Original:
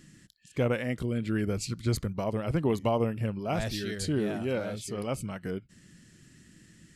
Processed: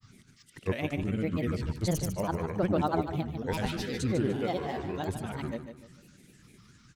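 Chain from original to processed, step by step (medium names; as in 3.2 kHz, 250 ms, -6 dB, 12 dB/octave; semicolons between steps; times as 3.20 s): granulator, pitch spread up and down by 7 st; on a send: feedback delay 149 ms, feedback 34%, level -9 dB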